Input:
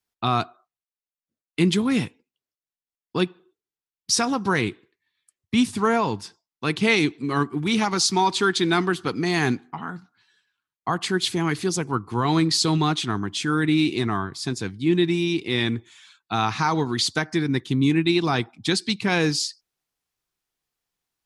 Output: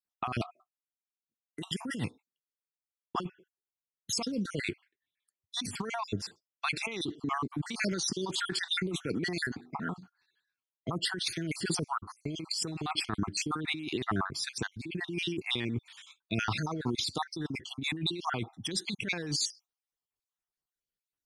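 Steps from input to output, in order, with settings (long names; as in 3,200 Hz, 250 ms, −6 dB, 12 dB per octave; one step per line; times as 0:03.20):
time-frequency cells dropped at random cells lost 51%
noise gate −53 dBFS, range −11 dB
compressor whose output falls as the input rises −29 dBFS, ratio −1
level −4 dB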